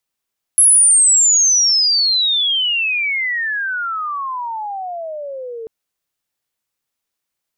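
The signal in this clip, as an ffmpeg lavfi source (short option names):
-f lavfi -i "aevalsrc='pow(10,(-6.5-19.5*t/5.09)/20)*sin(2*PI*11000*5.09/log(440/11000)*(exp(log(440/11000)*t/5.09)-1))':d=5.09:s=44100"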